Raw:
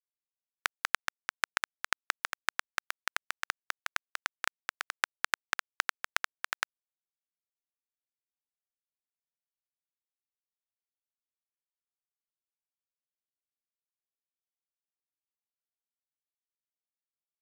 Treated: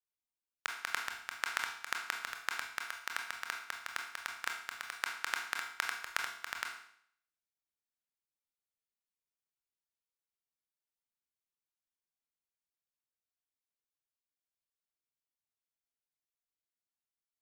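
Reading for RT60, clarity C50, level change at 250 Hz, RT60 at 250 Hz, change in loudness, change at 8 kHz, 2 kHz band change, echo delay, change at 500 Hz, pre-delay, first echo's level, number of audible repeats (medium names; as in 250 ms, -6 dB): 0.65 s, 5.5 dB, -3.0 dB, 0.65 s, -3.5 dB, -3.5 dB, -3.5 dB, no echo, -4.5 dB, 22 ms, no echo, no echo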